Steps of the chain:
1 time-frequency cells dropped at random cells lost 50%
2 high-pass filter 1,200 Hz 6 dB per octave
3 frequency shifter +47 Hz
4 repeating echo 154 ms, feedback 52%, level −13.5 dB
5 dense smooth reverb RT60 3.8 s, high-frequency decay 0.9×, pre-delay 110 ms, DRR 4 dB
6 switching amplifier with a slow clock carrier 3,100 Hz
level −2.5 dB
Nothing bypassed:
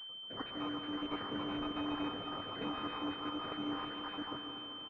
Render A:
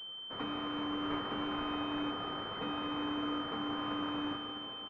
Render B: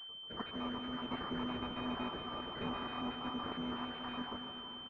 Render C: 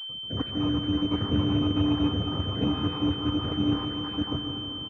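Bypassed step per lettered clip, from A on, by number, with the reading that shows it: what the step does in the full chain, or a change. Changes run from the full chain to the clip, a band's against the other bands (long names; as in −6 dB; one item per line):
1, change in crest factor −1.5 dB
3, 125 Hz band +2.0 dB
2, 125 Hz band +14.5 dB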